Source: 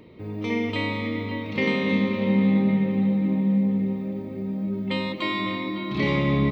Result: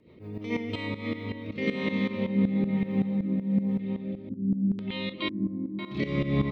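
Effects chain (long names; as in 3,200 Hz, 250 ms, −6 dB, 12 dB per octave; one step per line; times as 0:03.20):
0:03.79–0:05.79: auto-filter low-pass square 1 Hz 240–3,500 Hz
rotating-speaker cabinet horn 7 Hz, later 1.1 Hz, at 0:00.27
shaped tremolo saw up 5.3 Hz, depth 80%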